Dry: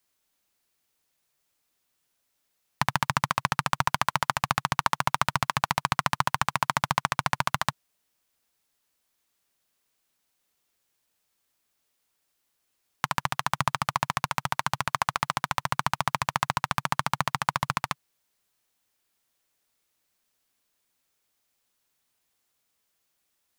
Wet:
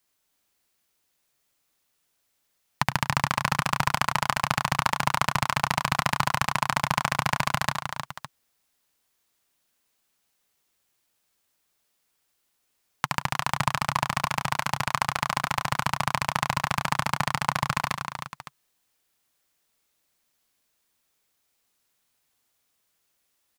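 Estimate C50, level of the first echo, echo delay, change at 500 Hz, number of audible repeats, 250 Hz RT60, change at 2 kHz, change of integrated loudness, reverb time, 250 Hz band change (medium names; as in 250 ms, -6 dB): no reverb, -9.0 dB, 71 ms, +2.5 dB, 4, no reverb, +2.0 dB, +1.5 dB, no reverb, +4.0 dB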